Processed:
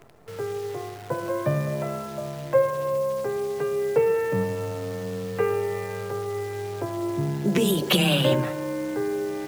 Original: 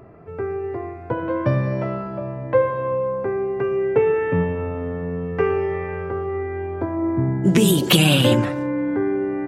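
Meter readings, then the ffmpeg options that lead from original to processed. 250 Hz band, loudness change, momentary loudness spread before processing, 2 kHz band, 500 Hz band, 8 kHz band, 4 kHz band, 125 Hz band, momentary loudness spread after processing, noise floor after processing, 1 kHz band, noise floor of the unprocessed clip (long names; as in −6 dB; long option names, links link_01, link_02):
−7.0 dB, −4.5 dB, 12 LU, −4.5 dB, −3.0 dB, −6.0 dB, −4.5 dB, −6.5 dB, 11 LU, −38 dBFS, −4.0 dB, −34 dBFS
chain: -af "equalizer=frequency=250:width_type=o:width=1:gain=-5,equalizer=frequency=500:width_type=o:width=1:gain=3,equalizer=frequency=8000:width_type=o:width=1:gain=-4,afreqshift=16,acrusher=bits=7:dc=4:mix=0:aa=0.000001,volume=-4.5dB"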